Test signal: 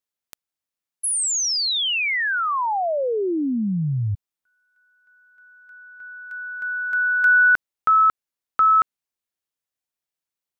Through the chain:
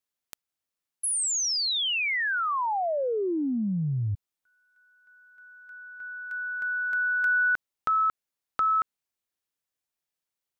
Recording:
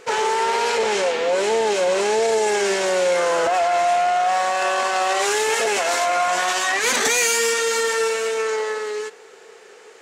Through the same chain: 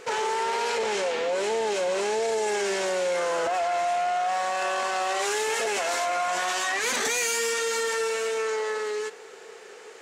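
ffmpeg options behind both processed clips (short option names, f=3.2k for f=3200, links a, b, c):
-af "acompressor=threshold=-30dB:ratio=2:attack=5.4:release=29:detection=rms"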